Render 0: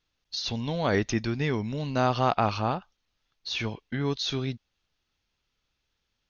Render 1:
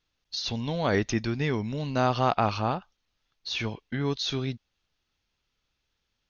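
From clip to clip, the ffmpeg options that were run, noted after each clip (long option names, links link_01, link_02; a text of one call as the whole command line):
ffmpeg -i in.wav -af anull out.wav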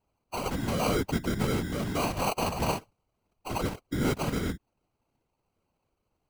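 ffmpeg -i in.wav -af "alimiter=limit=-17dB:level=0:latency=1:release=187,acrusher=samples=25:mix=1:aa=0.000001,afftfilt=real='hypot(re,im)*cos(2*PI*random(0))':imag='hypot(re,im)*sin(2*PI*random(1))':win_size=512:overlap=0.75,volume=6.5dB" out.wav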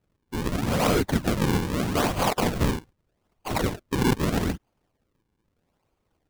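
ffmpeg -i in.wav -af "acrusher=samples=39:mix=1:aa=0.000001:lfo=1:lforange=62.4:lforate=0.8,volume=5dB" out.wav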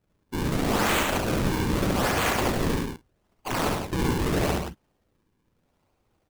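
ffmpeg -i in.wav -filter_complex "[0:a]aeval=exprs='(mod(11.2*val(0)+1,2)-1)/11.2':channel_layout=same,asplit=2[link_01][link_02];[link_02]aecho=0:1:69.97|113.7|172:0.794|0.251|0.447[link_03];[link_01][link_03]amix=inputs=2:normalize=0" out.wav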